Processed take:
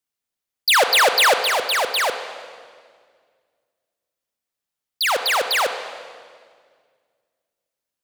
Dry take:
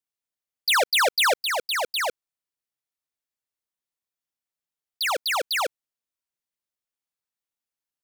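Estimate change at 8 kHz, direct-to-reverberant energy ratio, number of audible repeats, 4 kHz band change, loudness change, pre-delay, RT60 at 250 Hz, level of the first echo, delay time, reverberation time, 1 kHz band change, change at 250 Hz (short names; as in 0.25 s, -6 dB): +5.5 dB, 7.5 dB, none, +5.5 dB, +5.5 dB, 31 ms, 2.4 s, none, none, 1.9 s, +6.0 dB, +5.5 dB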